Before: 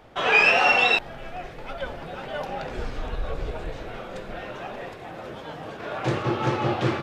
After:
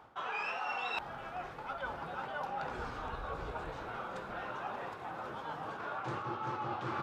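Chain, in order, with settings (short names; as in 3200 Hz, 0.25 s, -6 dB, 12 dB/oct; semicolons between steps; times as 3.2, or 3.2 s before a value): HPF 57 Hz; band shelf 1100 Hz +9.5 dB 1.1 oct; reverse; compressor 10:1, threshold -26 dBFS, peak gain reduction 16 dB; reverse; gain -8.5 dB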